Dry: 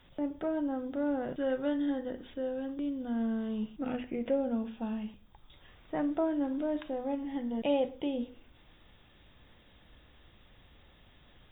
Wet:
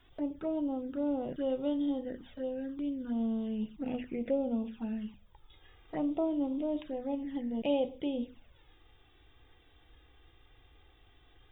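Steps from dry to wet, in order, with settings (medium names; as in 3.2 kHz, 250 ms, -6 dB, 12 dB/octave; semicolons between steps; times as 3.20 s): touch-sensitive flanger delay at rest 2.9 ms, full sweep at -30 dBFS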